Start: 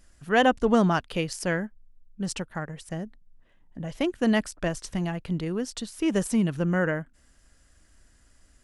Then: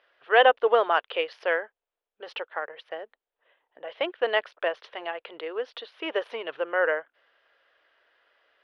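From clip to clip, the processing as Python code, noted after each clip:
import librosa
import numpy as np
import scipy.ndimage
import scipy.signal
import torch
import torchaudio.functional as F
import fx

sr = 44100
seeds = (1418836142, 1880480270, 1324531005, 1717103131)

y = scipy.signal.sosfilt(scipy.signal.ellip(3, 1.0, 40, [460.0, 3400.0], 'bandpass', fs=sr, output='sos'), x)
y = y * librosa.db_to_amplitude(4.0)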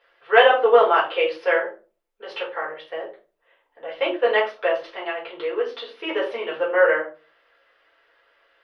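y = fx.room_shoebox(x, sr, seeds[0], volume_m3=160.0, walls='furnished', distance_m=4.3)
y = y * librosa.db_to_amplitude(-3.5)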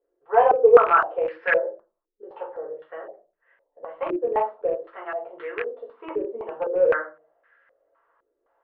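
y = fx.rattle_buzz(x, sr, strikes_db=-35.0, level_db=-9.0)
y = fx.filter_held_lowpass(y, sr, hz=3.9, low_hz=370.0, high_hz=1700.0)
y = y * librosa.db_to_amplitude(-8.0)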